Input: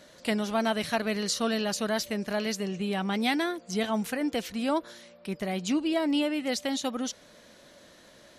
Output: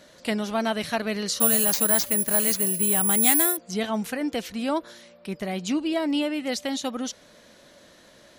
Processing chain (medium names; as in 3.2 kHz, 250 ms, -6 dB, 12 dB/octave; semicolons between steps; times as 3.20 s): 1.40–3.57 s: careless resampling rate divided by 4×, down none, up zero stuff; trim +1.5 dB